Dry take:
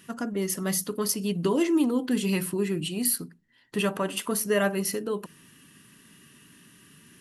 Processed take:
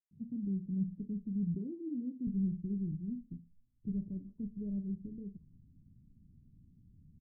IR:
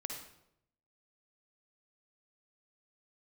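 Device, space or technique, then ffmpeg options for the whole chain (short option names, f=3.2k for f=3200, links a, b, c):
the neighbour's flat through the wall: -filter_complex "[0:a]asettb=1/sr,asplit=3[a][b][c];[a]atrim=end=1.434[d];[b]atrim=start=1.43:end=2.16,asetpts=PTS-STARTPTS,afade=t=in:d=0.004:c=qsin,afade=t=out:st=0.726:d=0.004:c=qsin,highpass=230[e];[c]atrim=start=2.156[f];[d][e]acrossfade=d=0.004:c1=hsin:c2=qsin[g];[g][f]acrossfade=d=0.004:c1=qsin:c2=hsin,asubboost=boost=10:cutoff=51,lowpass=f=200:w=0.5412,lowpass=f=200:w=1.3066,equalizer=f=84:t=o:w=0.77:g=5,acrossover=split=1200|4000[h][i][j];[h]adelay=110[k];[i]adelay=280[l];[k][l][j]amix=inputs=3:normalize=0"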